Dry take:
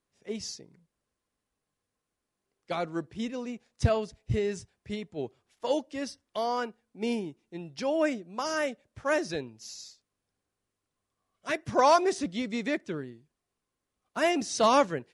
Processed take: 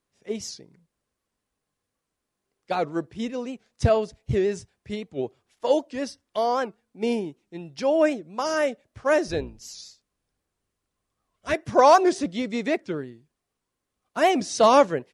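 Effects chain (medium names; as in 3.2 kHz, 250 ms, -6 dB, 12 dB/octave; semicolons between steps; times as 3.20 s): 9.27–11.54 s: octave divider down 2 oct, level 0 dB; dynamic bell 540 Hz, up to +5 dB, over -38 dBFS, Q 0.81; warped record 78 rpm, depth 160 cents; trim +2.5 dB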